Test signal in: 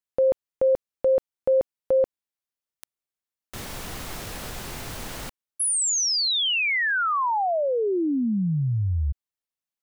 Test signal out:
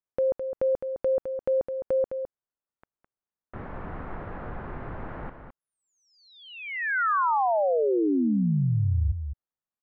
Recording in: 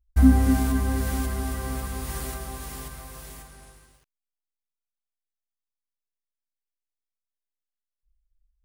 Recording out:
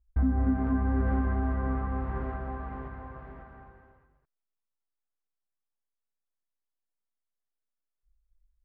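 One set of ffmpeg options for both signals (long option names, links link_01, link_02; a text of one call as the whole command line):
ffmpeg -i in.wav -af "lowpass=frequency=1600:width=0.5412,lowpass=frequency=1600:width=1.3066,acompressor=threshold=-21dB:ratio=5:attack=0.55:release=435:knee=1:detection=peak,aecho=1:1:210:0.398" out.wav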